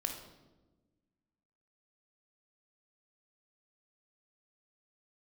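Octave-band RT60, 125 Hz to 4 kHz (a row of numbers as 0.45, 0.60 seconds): 1.8, 1.9, 1.4, 1.0, 0.80, 0.80 seconds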